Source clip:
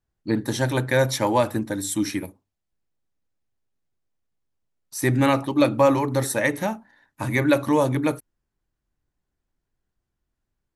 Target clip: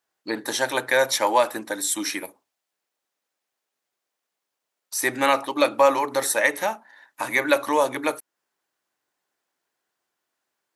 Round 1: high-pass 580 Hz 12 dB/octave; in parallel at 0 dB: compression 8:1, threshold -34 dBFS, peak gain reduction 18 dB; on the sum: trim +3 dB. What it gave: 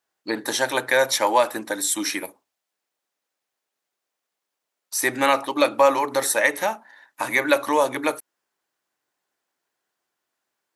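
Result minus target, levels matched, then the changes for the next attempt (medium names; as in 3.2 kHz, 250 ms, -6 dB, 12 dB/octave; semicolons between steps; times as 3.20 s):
compression: peak gain reduction -7 dB
change: compression 8:1, threshold -42 dBFS, peak gain reduction 25 dB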